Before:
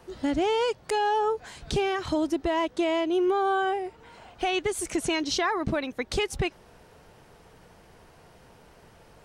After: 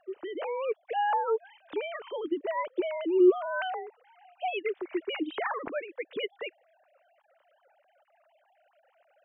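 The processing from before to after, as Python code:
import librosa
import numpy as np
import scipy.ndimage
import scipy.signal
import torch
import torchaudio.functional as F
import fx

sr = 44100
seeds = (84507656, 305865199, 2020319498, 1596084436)

y = fx.sine_speech(x, sr)
y = y * librosa.db_to_amplitude(-3.5)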